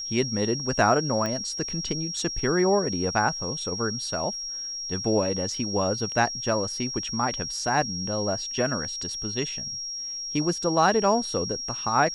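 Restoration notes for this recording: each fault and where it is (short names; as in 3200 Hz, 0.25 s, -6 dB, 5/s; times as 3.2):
tone 5600 Hz -31 dBFS
1.26 pop -16 dBFS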